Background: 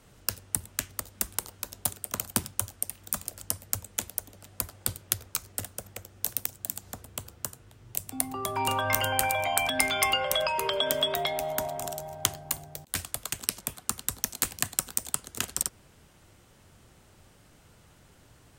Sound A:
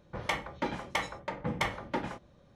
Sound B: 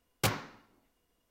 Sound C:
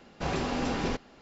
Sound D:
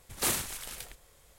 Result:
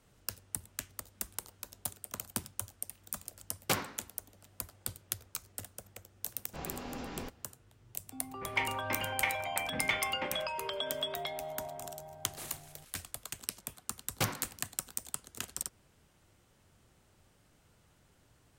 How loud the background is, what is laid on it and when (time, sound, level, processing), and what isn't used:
background -9 dB
3.46 s: add B -1 dB + high-pass 170 Hz
6.33 s: add C -12 dB
8.28 s: add A -9.5 dB + peaking EQ 2.4 kHz +15 dB
12.15 s: add D -17 dB
13.97 s: add B -3 dB + band-stop 420 Hz

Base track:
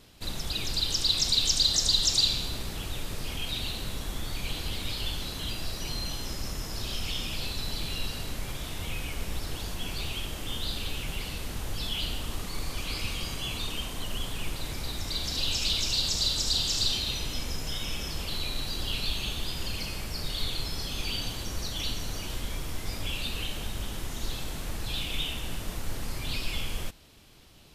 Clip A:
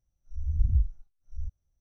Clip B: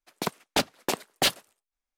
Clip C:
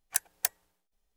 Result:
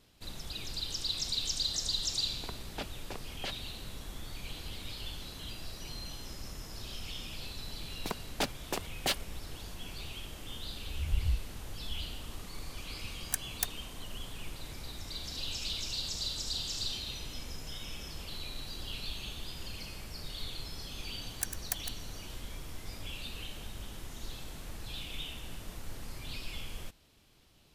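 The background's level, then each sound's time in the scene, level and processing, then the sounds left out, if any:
base track -9 dB
2.22 s: add B -15.5 dB + low-pass 4.8 kHz
7.84 s: add B -8 dB
10.53 s: add A -6.5 dB
13.18 s: add C -5 dB
21.27 s: add C -7 dB + chunks repeated in reverse 106 ms, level -8.5 dB

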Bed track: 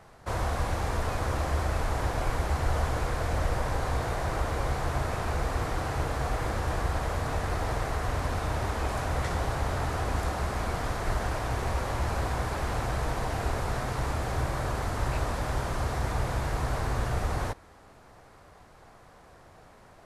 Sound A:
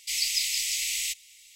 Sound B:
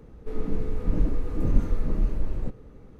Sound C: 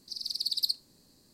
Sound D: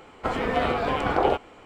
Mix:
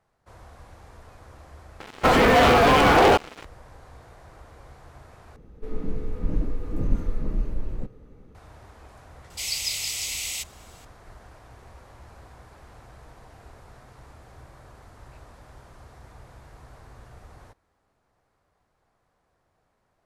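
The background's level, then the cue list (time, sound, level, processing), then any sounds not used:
bed track -18.5 dB
1.80 s: replace with D -4 dB + waveshaping leveller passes 5
5.36 s: replace with B -2 dB
9.30 s: add A -1.5 dB
not used: C

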